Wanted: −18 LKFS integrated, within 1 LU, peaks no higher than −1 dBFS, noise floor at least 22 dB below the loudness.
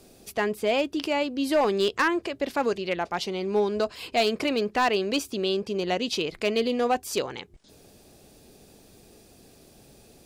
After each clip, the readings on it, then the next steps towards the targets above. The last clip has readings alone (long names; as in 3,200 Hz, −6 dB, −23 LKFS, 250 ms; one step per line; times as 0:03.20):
share of clipped samples 0.4%; peaks flattened at −16.0 dBFS; integrated loudness −26.5 LKFS; sample peak −16.0 dBFS; target loudness −18.0 LKFS
→ clipped peaks rebuilt −16 dBFS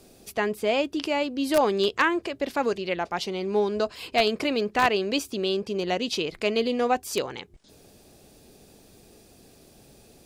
share of clipped samples 0.0%; integrated loudness −26.0 LKFS; sample peak −7.0 dBFS; target loudness −18.0 LKFS
→ level +8 dB
brickwall limiter −1 dBFS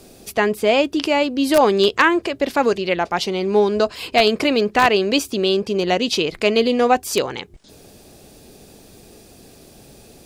integrated loudness −18.0 LKFS; sample peak −1.0 dBFS; background noise floor −47 dBFS